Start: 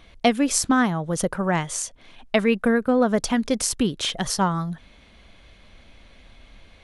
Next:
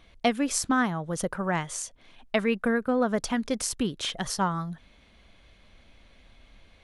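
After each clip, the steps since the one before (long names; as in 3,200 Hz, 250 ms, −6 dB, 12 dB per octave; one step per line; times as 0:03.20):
dynamic equaliser 1,400 Hz, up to +3 dB, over −34 dBFS, Q 0.97
level −6 dB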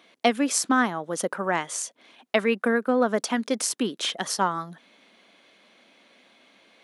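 high-pass filter 230 Hz 24 dB per octave
level +3.5 dB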